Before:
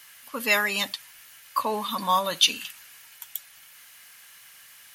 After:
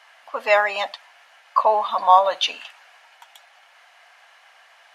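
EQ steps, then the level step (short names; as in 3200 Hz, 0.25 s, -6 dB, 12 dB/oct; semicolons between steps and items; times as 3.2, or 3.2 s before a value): resonant high-pass 700 Hz, resonance Q 4.9; tape spacing loss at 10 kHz 25 dB; +5.5 dB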